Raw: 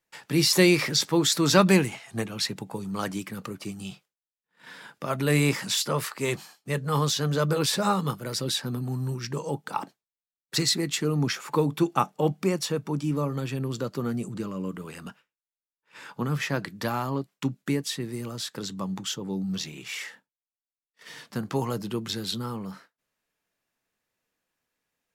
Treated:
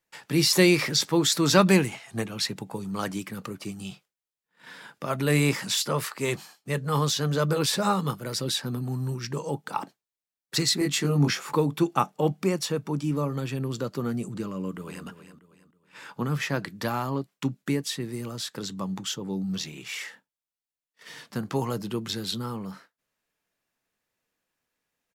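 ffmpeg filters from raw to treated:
-filter_complex "[0:a]asettb=1/sr,asplit=3[a][b][c];[a]atrim=end=10.794[d];[b]atrim=start=10.79:end=11.53,asetpts=PTS-STARTPTS,afade=t=in:d=0.004:c=qsin,afade=t=out:st=0.736:d=0.004:c=qsin,asplit=2[e][f];[f]adelay=21,volume=-2dB[g];[e][g]amix=inputs=2:normalize=0,atrim=end_sample=32634[h];[c]atrim=start=11.526[i];[d][h]acrossfade=d=0.004:c1=hsin:c2=qsin[j];[j][i]acrossfade=d=0.004:c1=qsin:c2=hsin,asplit=2[k][l];[l]afade=t=in:st=14.54:d=0.01,afade=t=out:st=15.06:d=0.01,aecho=0:1:320|640|960|1280:0.266073|0.0931254|0.0325939|0.0114079[m];[k][m]amix=inputs=2:normalize=0"

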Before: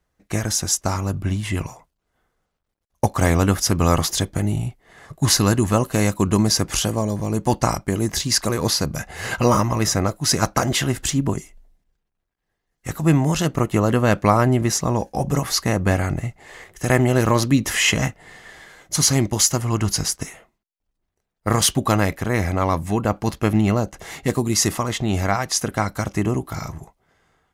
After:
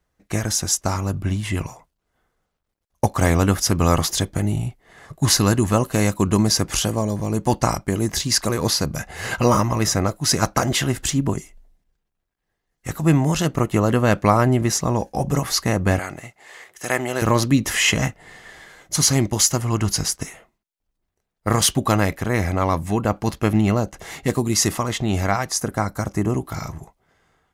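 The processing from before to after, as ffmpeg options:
-filter_complex "[0:a]asettb=1/sr,asplit=3[a][b][c];[a]atrim=end=15.994[d];[b]atrim=start=15.99:end=17.22,asetpts=PTS-STARTPTS,afade=t=in:d=0.004:c=qsin,afade=t=out:st=1.226:d=0.004:c=qsin,highpass=f=720:p=1[e];[c]atrim=start=17.216[f];[d][e]acrossfade=d=0.004:c1=hsin:c2=qsin[g];[g][f]acrossfade=d=0.004:c1=qsin:c2=hsin,asettb=1/sr,asplit=3[h][i][j];[h]atrim=end=25.494[k];[i]atrim=start=25.49:end=26.3,asetpts=PTS-STARTPTS,afade=t=in:d=0.004:c=qsin,afade=t=out:st=0.806:d=0.004:c=qsin,equalizer=f=3k:t=o:w=1.1:g=-9[l];[j]atrim=start=26.296[m];[k][l]acrossfade=d=0.004:c1=hsin:c2=qsin[n];[n][m]acrossfade=d=0.004:c1=qsin:c2=hsin"

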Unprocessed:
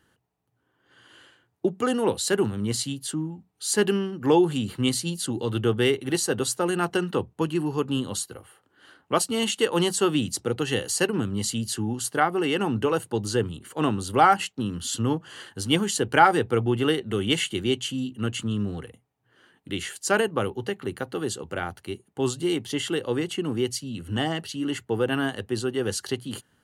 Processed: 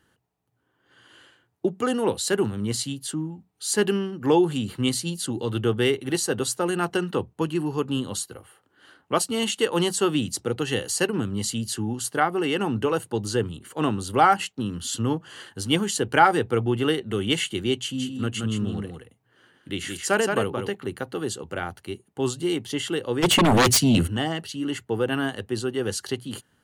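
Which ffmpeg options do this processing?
-filter_complex "[0:a]asettb=1/sr,asplit=3[a][b][c];[a]atrim=end=17.784[d];[b]atrim=start=17.78:end=20.75,asetpts=PTS-STARTPTS,afade=t=in:d=0.004:c=qsin,afade=t=out:st=2.966:d=0.004:c=qsin,aecho=1:1:173:0.562,atrim=end_sample=130977[e];[c]atrim=start=20.746[f];[d][e]acrossfade=d=0.004:c1=hsin:c2=qsin[g];[g][f]acrossfade=d=0.004:c1=qsin:c2=hsin,asplit=3[h][i][j];[h]afade=t=out:st=23.22:d=0.02[k];[i]aeval=exprs='0.211*sin(PI/2*5.01*val(0)/0.211)':c=same,afade=t=in:st=23.22:d=0.02,afade=t=out:st=24.06:d=0.02[l];[j]afade=t=in:st=24.06:d=0.02[m];[k][l][m]amix=inputs=3:normalize=0"

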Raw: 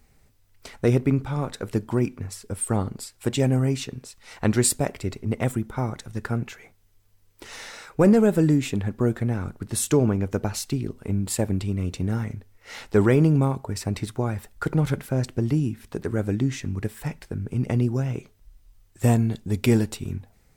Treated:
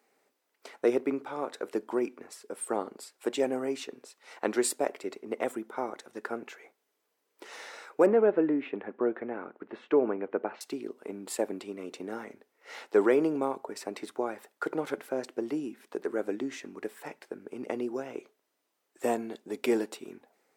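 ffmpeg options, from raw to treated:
-filter_complex "[0:a]asettb=1/sr,asplit=3[a][b][c];[a]atrim=end=8.064[d];[b]atrim=start=8.06:end=10.61,asetpts=PTS-STARTPTS,afade=t=in:d=0.004:c=qsin,afade=t=out:st=2.546:d=0.004:c=qsin,lowpass=f=2.6k:w=0.5412,lowpass=f=2.6k:w=1.3066[e];[c]atrim=start=10.606[f];[d][e]acrossfade=d=0.004:c1=hsin:c2=qsin[g];[g][f]acrossfade=d=0.004:c1=qsin:c2=hsin,highpass=f=330:w=0.5412,highpass=f=330:w=1.3066,highshelf=f=2.3k:g=-9,volume=-1dB"

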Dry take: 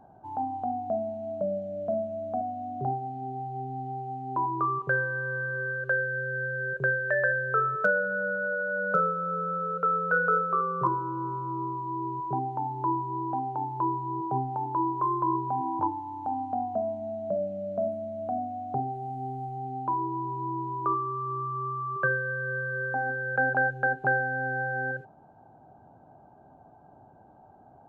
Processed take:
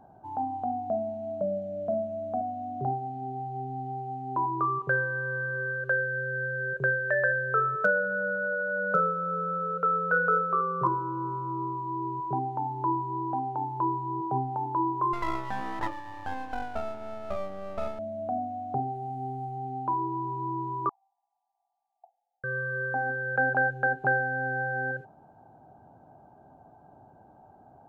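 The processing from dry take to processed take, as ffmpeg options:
-filter_complex "[0:a]asettb=1/sr,asplit=3[a][b][c];[a]atrim=end=15.134[d];[b]atrim=start=15.13:end=17.99,asetpts=PTS-STARTPTS,afade=t=in:d=0.004:c=qsin,afade=t=out:st=2.856:d=0.004:c=qsin,aeval=exprs='max(val(0),0)':c=same[e];[c]atrim=start=17.986[f];[d][e]acrossfade=d=0.004:c1=hsin:c2=qsin[g];[g][f]acrossfade=d=0.004:c1=qsin:c2=hsin,asettb=1/sr,asplit=3[h][i][j];[h]atrim=end=20.894[k];[i]atrim=start=20.89:end=22.44,asetpts=PTS-STARTPTS,afade=t=in:d=0.004:c=qsin,afade=t=out:st=1.546:d=0.004:c=qsin,asuperpass=centerf=770:order=12:qfactor=4.2[l];[j]atrim=start=22.436[m];[k][l]acrossfade=d=0.004:c1=hsin:c2=qsin[n];[n][m]acrossfade=d=0.004:c1=qsin:c2=hsin"

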